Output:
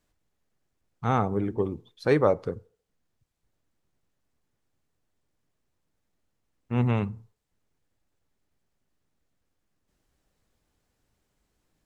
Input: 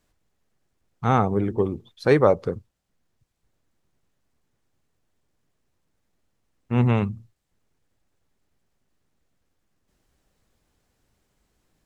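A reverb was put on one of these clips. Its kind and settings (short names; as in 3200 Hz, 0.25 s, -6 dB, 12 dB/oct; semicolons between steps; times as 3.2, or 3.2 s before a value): FDN reverb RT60 0.49 s, low-frequency decay 0.7×, high-frequency decay 0.6×, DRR 19 dB; gain -4.5 dB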